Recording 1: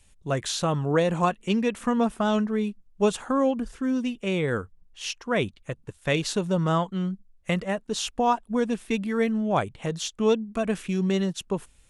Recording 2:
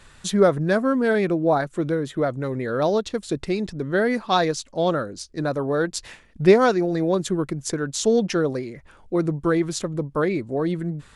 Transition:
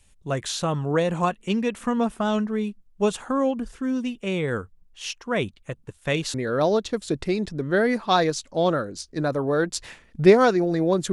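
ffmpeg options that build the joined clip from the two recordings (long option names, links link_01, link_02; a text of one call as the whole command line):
ffmpeg -i cue0.wav -i cue1.wav -filter_complex "[0:a]apad=whole_dur=11.12,atrim=end=11.12,atrim=end=6.342[link_01];[1:a]atrim=start=2.548:end=7.33[link_02];[link_01][link_02]acrossfade=duration=0.004:curve1=hsin:curve2=hsin" out.wav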